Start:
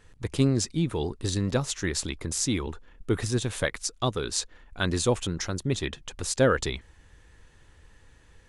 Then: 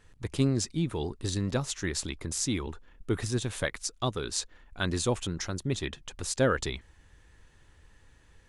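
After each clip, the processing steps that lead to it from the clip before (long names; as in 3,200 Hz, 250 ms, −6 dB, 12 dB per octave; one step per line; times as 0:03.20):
parametric band 480 Hz −2.5 dB 0.25 octaves
level −3 dB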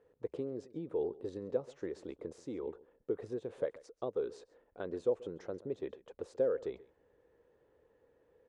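downward compressor 5 to 1, threshold −30 dBFS, peak gain reduction 10 dB
resonant band-pass 480 Hz, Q 4.8
slap from a distant wall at 23 metres, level −20 dB
level +8 dB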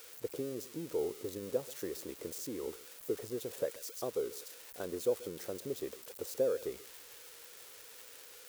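spike at every zero crossing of −36 dBFS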